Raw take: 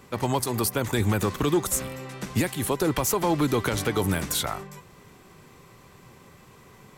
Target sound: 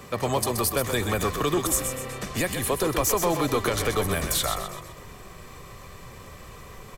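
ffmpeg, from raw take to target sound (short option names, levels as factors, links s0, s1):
-filter_complex "[0:a]acrossover=split=210[s0][s1];[s0]asoftclip=type=tanh:threshold=0.0266[s2];[s1]aecho=1:1:1.7:0.4[s3];[s2][s3]amix=inputs=2:normalize=0,asubboost=boost=4:cutoff=70,asplit=5[s4][s5][s6][s7][s8];[s5]adelay=127,afreqshift=-34,volume=0.422[s9];[s6]adelay=254,afreqshift=-68,volume=0.16[s10];[s7]adelay=381,afreqshift=-102,volume=0.061[s11];[s8]adelay=508,afreqshift=-136,volume=0.0232[s12];[s4][s9][s10][s11][s12]amix=inputs=5:normalize=0,asplit=2[s13][s14];[s14]acompressor=threshold=0.00447:ratio=6,volume=1.33[s15];[s13][s15]amix=inputs=2:normalize=0"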